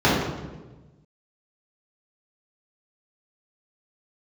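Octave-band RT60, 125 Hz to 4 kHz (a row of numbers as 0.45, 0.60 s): 1.7, 1.5, 1.3, 1.1, 0.95, 0.85 s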